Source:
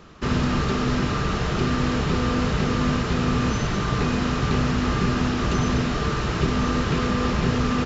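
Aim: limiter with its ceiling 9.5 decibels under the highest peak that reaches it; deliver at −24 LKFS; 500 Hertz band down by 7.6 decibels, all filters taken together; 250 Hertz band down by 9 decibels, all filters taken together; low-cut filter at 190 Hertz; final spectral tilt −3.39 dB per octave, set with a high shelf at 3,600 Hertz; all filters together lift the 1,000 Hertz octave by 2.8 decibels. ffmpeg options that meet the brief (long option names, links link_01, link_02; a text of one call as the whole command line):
ffmpeg -i in.wav -af "highpass=190,equalizer=frequency=250:width_type=o:gain=-7,equalizer=frequency=500:width_type=o:gain=-8.5,equalizer=frequency=1000:width_type=o:gain=6.5,highshelf=frequency=3600:gain=-8,volume=8dB,alimiter=limit=-16dB:level=0:latency=1" out.wav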